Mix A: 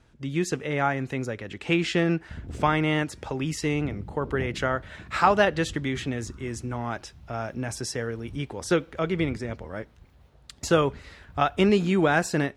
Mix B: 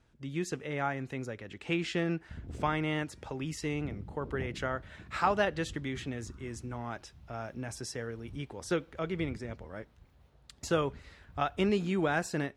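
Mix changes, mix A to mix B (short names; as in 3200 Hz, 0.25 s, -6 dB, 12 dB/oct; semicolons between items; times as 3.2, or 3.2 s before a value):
speech -8.0 dB; background -5.5 dB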